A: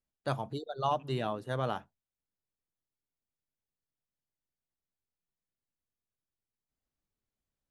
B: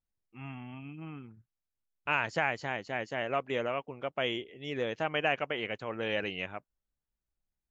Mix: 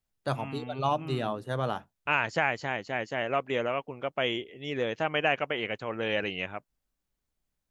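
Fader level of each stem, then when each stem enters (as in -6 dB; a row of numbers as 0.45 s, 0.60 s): +2.5 dB, +3.0 dB; 0.00 s, 0.00 s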